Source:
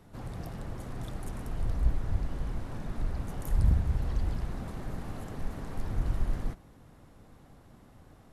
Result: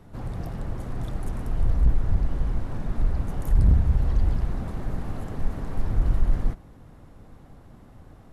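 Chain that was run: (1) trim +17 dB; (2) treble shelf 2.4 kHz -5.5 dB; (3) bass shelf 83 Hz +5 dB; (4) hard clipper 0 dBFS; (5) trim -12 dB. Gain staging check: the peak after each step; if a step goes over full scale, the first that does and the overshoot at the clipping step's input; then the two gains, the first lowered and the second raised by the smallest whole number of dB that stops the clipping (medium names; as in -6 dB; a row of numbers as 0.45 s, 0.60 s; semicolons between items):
+4.5 dBFS, +4.5 dBFS, +7.5 dBFS, 0.0 dBFS, -12.0 dBFS; step 1, 7.5 dB; step 1 +9 dB, step 5 -4 dB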